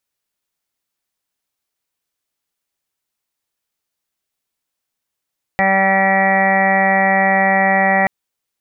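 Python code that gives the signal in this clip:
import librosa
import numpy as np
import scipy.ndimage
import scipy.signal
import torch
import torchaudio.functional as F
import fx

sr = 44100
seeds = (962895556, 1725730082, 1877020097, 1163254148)

y = fx.additive_steady(sr, length_s=2.48, hz=193.0, level_db=-20.5, upper_db=(-10.0, 1, 5, -8.0, -11.0, -9.0, -16.5, -6.5, 4.5, -10.0, -4.5))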